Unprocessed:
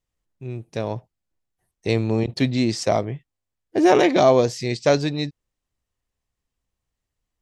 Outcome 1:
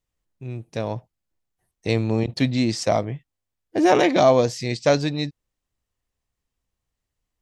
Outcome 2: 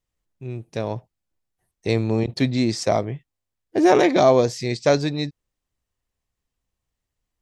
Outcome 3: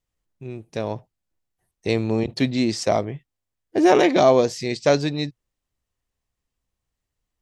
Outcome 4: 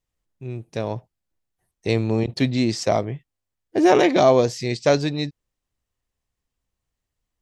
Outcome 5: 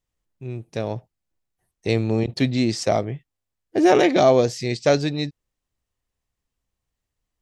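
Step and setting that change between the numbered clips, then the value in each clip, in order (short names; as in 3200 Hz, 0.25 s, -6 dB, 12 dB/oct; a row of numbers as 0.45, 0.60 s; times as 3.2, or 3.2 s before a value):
dynamic EQ, frequency: 390, 2900, 120, 9000, 1000 Hz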